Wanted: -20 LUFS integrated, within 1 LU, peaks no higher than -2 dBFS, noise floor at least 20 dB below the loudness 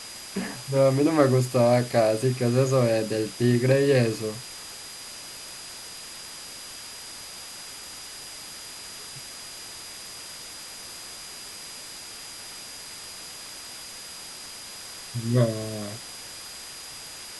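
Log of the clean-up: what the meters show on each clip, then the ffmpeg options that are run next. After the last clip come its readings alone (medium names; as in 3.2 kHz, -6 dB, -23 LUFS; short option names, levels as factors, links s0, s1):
steady tone 4.9 kHz; tone level -43 dBFS; noise floor -41 dBFS; noise floor target -48 dBFS; loudness -28.0 LUFS; peak level -6.0 dBFS; loudness target -20.0 LUFS
-> -af "bandreject=f=4900:w=30"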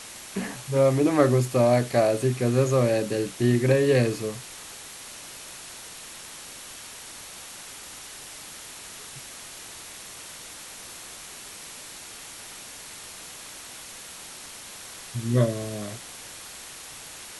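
steady tone not found; noise floor -42 dBFS; noise floor target -44 dBFS
-> -af "afftdn=nr=6:nf=-42"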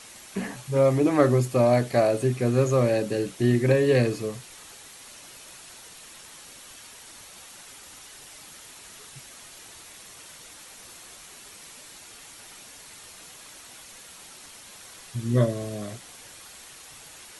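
noise floor -47 dBFS; loudness -23.5 LUFS; peak level -6.0 dBFS; loudness target -20.0 LUFS
-> -af "volume=1.5"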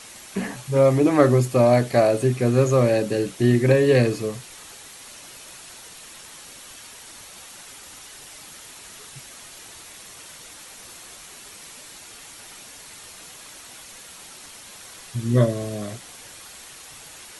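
loudness -20.0 LUFS; peak level -2.5 dBFS; noise floor -43 dBFS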